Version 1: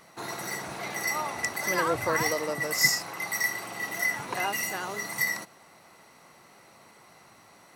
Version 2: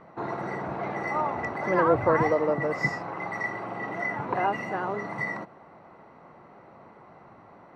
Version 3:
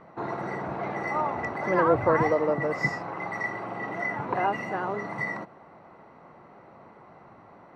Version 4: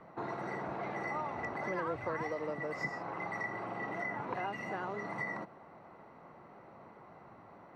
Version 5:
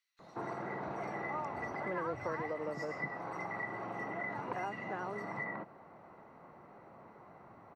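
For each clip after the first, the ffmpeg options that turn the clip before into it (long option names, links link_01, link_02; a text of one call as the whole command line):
ffmpeg -i in.wav -af "lowpass=1100,volume=7dB" out.wav
ffmpeg -i in.wav -af anull out.wav
ffmpeg -i in.wav -filter_complex "[0:a]acrossover=split=200|2000[link_01][link_02][link_03];[link_01]acompressor=threshold=-46dB:ratio=4[link_04];[link_02]acompressor=threshold=-33dB:ratio=4[link_05];[link_03]acompressor=threshold=-41dB:ratio=4[link_06];[link_04][link_05][link_06]amix=inputs=3:normalize=0,volume=-4dB" out.wav
ffmpeg -i in.wav -filter_complex "[0:a]acrossover=split=3500[link_01][link_02];[link_01]adelay=190[link_03];[link_03][link_02]amix=inputs=2:normalize=0,volume=-1dB" out.wav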